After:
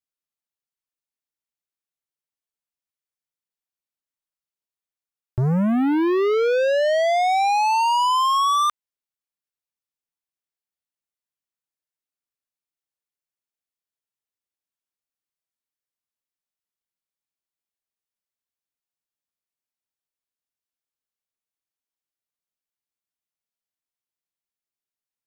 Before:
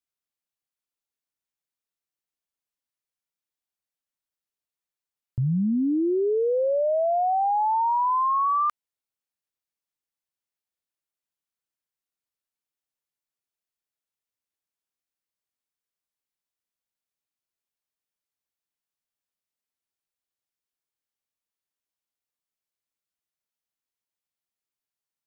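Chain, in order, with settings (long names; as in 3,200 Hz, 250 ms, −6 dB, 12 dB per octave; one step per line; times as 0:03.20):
leveller curve on the samples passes 3
level +2 dB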